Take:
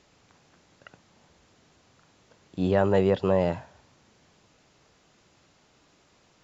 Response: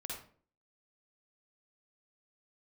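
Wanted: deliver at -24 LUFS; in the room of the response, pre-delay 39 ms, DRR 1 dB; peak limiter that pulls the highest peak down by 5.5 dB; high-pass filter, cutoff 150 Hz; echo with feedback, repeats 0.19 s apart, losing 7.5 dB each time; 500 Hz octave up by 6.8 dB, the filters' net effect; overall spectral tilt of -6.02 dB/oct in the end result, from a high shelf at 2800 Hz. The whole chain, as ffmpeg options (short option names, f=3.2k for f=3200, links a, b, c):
-filter_complex "[0:a]highpass=150,equalizer=f=500:t=o:g=8,highshelf=f=2.8k:g=3,alimiter=limit=-11dB:level=0:latency=1,aecho=1:1:190|380|570|760|950:0.422|0.177|0.0744|0.0312|0.0131,asplit=2[a][b];[1:a]atrim=start_sample=2205,adelay=39[c];[b][c]afir=irnorm=-1:irlink=0,volume=0dB[d];[a][d]amix=inputs=2:normalize=0,volume=-4dB"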